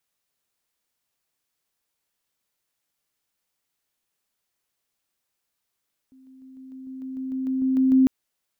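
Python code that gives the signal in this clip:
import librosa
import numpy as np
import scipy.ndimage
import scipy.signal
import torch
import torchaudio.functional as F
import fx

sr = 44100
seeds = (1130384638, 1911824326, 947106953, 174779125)

y = fx.level_ladder(sr, hz=262.0, from_db=-49.0, step_db=3.0, steps=13, dwell_s=0.15, gap_s=0.0)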